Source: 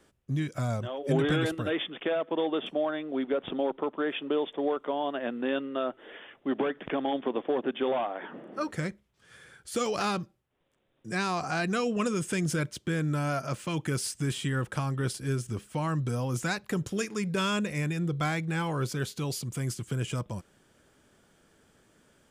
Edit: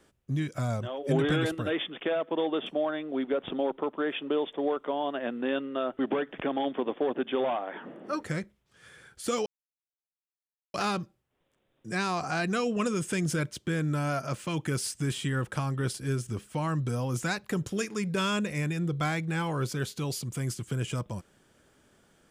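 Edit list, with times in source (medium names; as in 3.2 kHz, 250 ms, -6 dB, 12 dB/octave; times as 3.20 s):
5.99–6.47 s: delete
9.94 s: insert silence 1.28 s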